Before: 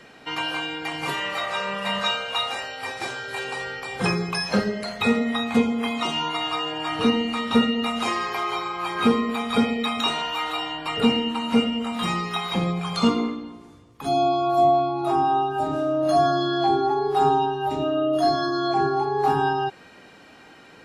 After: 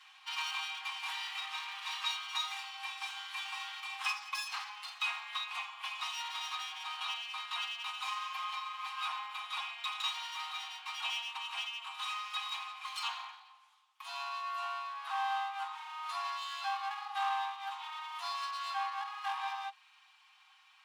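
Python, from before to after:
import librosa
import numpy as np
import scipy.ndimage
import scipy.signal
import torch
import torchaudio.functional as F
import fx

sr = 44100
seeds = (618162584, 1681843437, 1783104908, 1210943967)

y = fx.lower_of_two(x, sr, delay_ms=5.5)
y = scipy.signal.sosfilt(scipy.signal.cheby1(6, 9, 770.0, 'highpass', fs=sr, output='sos'), y)
y = fx.rider(y, sr, range_db=10, speed_s=2.0)
y = y * 10.0 ** (-6.0 / 20.0)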